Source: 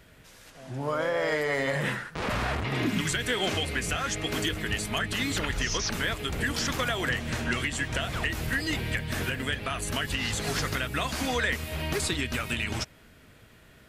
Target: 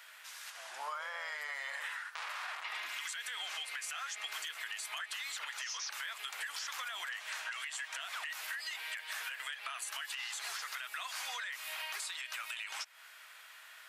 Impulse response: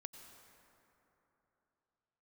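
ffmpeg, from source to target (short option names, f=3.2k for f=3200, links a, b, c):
-af "highpass=f=940:w=0.5412,highpass=f=940:w=1.3066,alimiter=limit=-24dB:level=0:latency=1:release=51,acompressor=threshold=-44dB:ratio=6,volume=5dB"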